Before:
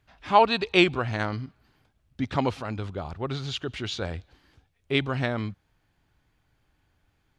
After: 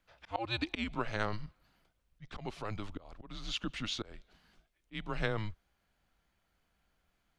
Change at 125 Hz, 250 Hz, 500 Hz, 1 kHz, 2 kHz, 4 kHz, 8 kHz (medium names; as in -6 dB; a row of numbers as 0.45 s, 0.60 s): -11.0 dB, -12.0 dB, -14.5 dB, -15.5 dB, -11.0 dB, -9.5 dB, -5.0 dB